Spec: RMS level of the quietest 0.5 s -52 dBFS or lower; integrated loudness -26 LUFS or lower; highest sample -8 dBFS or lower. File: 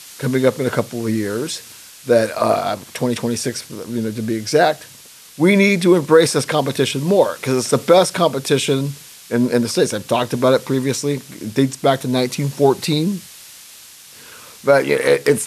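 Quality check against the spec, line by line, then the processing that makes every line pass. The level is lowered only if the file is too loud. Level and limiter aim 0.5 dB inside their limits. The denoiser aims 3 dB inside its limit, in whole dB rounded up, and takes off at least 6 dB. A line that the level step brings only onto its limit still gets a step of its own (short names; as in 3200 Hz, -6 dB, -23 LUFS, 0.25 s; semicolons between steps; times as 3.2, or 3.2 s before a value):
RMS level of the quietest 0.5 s -42 dBFS: fail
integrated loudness -17.5 LUFS: fail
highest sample -1.5 dBFS: fail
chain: denoiser 6 dB, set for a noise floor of -42 dBFS; gain -9 dB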